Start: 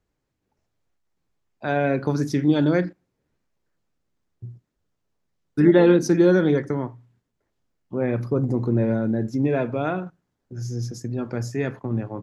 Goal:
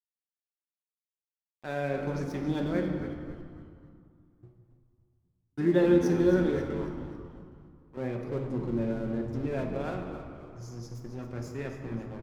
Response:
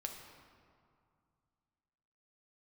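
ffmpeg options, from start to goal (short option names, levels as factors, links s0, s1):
-filter_complex "[0:a]asettb=1/sr,asplit=3[s0][s1][s2];[s0]atrim=end=6.674[s3];[s1]atrim=start=6.67:end=7.97,asetpts=PTS-STARTPTS,afade=t=in:d=0.004:c=qsin,afade=t=out:st=1.296:d=0.004:c=qsin,highpass=420[s4];[s2]atrim=start=7.966[s5];[s3][s4]acrossfade=d=0.004:c1=hsin:c2=qsin[s6];[s6][s5]acrossfade=d=0.004:c1=qsin:c2=hsin,aeval=exprs='sgn(val(0))*max(abs(val(0))-0.015,0)':c=same,asplit=5[s7][s8][s9][s10][s11];[s8]adelay=272,afreqshift=-99,volume=0.282[s12];[s9]adelay=544,afreqshift=-198,volume=0.119[s13];[s10]adelay=816,afreqshift=-297,volume=0.0495[s14];[s11]adelay=1088,afreqshift=-396,volume=0.0209[s15];[s7][s12][s13][s14][s15]amix=inputs=5:normalize=0[s16];[1:a]atrim=start_sample=2205[s17];[s16][s17]afir=irnorm=-1:irlink=0,volume=0.447"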